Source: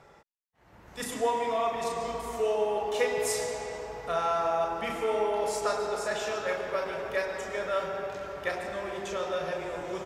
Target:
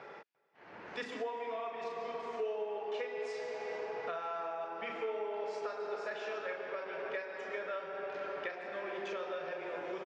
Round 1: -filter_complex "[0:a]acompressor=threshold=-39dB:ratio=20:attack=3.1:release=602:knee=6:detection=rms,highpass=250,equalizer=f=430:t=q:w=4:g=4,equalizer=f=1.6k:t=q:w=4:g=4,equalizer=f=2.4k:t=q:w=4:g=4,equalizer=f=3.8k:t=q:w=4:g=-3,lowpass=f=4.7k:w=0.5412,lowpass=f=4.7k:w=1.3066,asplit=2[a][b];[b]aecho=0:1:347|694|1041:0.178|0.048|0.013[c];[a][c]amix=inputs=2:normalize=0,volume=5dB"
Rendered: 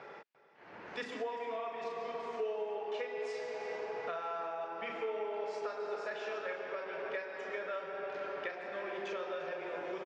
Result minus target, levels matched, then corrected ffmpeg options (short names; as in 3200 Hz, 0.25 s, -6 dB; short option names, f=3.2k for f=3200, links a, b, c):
echo-to-direct +11.5 dB
-filter_complex "[0:a]acompressor=threshold=-39dB:ratio=20:attack=3.1:release=602:knee=6:detection=rms,highpass=250,equalizer=f=430:t=q:w=4:g=4,equalizer=f=1.6k:t=q:w=4:g=4,equalizer=f=2.4k:t=q:w=4:g=4,equalizer=f=3.8k:t=q:w=4:g=-3,lowpass=f=4.7k:w=0.5412,lowpass=f=4.7k:w=1.3066,asplit=2[a][b];[b]aecho=0:1:347|694:0.0473|0.0128[c];[a][c]amix=inputs=2:normalize=0,volume=5dB"